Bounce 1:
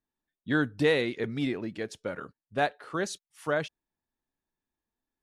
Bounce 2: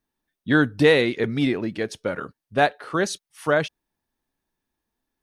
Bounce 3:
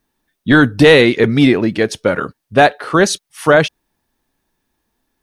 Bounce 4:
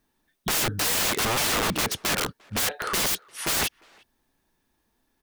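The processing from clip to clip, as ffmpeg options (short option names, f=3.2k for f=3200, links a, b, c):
-af "bandreject=f=7.3k:w=8.5,volume=8dB"
-af "apsyclip=13.5dB,volume=-2dB"
-filter_complex "[0:a]aeval=exprs='(mod(7.08*val(0)+1,2)-1)/7.08':c=same,asplit=2[a][b];[b]adelay=350,highpass=300,lowpass=3.4k,asoftclip=type=hard:threshold=-25.5dB,volume=-24dB[c];[a][c]amix=inputs=2:normalize=0,volume=-2.5dB"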